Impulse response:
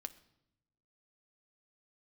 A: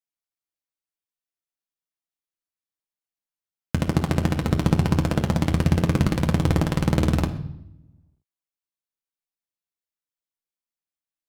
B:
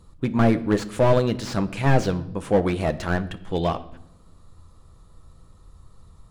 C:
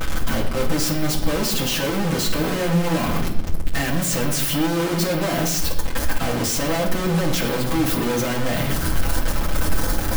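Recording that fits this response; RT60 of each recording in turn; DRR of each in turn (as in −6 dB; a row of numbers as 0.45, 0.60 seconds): B; 0.80, 0.80, 0.80 seconds; 3.0, 9.5, −4.5 decibels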